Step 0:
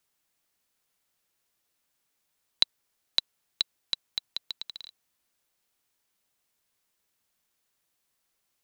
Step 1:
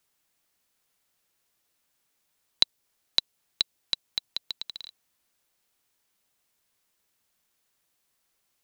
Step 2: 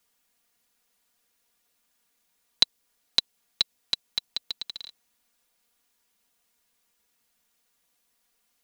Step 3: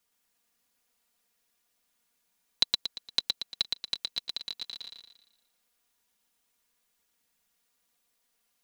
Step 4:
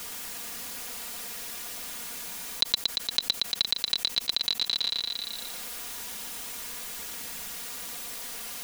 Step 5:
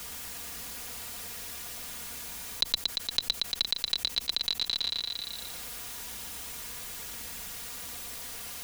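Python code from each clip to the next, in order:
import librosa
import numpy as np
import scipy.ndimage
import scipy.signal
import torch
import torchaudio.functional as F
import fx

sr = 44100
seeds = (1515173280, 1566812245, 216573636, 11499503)

y1 = fx.dynamic_eq(x, sr, hz=1400.0, q=0.89, threshold_db=-48.0, ratio=4.0, max_db=-5)
y1 = y1 * librosa.db_to_amplitude(2.5)
y2 = y1 + 0.79 * np.pad(y1, (int(4.2 * sr / 1000.0), 0))[:len(y1)]
y3 = fx.echo_feedback(y2, sr, ms=116, feedback_pct=43, wet_db=-3)
y3 = y3 * librosa.db_to_amplitude(-5.0)
y4 = fx.env_flatten(y3, sr, amount_pct=70)
y5 = fx.octave_divider(y4, sr, octaves=2, level_db=3.0)
y5 = y5 * librosa.db_to_amplitude(-2.5)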